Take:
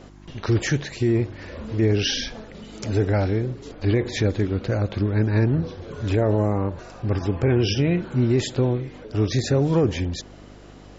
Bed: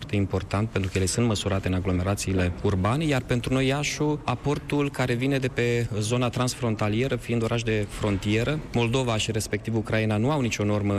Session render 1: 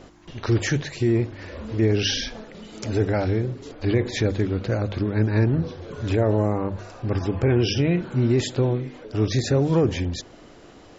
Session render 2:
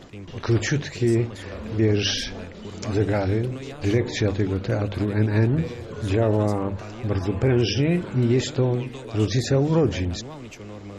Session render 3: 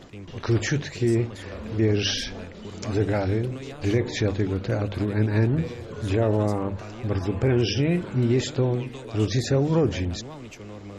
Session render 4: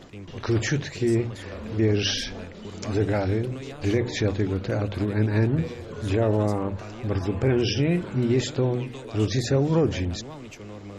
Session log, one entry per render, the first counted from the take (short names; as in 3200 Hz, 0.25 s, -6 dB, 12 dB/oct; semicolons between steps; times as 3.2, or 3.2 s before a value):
de-hum 50 Hz, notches 5
add bed -14.5 dB
gain -1.5 dB
notches 60/120 Hz